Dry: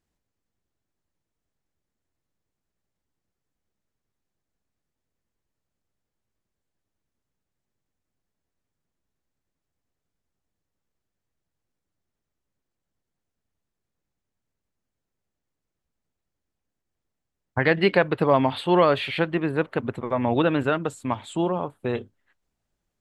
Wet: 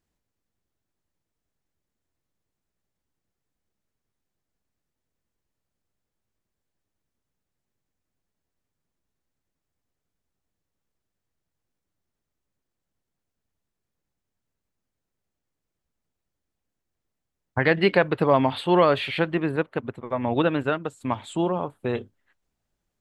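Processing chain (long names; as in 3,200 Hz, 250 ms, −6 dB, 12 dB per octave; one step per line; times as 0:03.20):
0:19.56–0:21.01: expander for the loud parts 1.5 to 1, over −35 dBFS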